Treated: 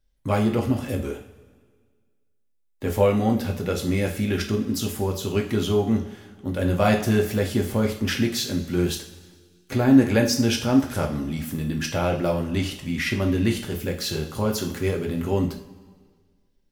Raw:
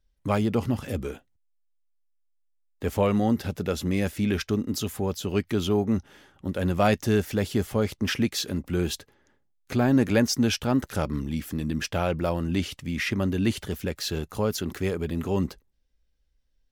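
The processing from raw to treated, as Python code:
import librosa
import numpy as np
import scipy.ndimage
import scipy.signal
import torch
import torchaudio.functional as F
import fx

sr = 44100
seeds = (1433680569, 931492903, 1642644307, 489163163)

y = fx.high_shelf(x, sr, hz=11000.0, db=3.0)
y = fx.rev_double_slope(y, sr, seeds[0], early_s=0.4, late_s=1.7, knee_db=-16, drr_db=1.0)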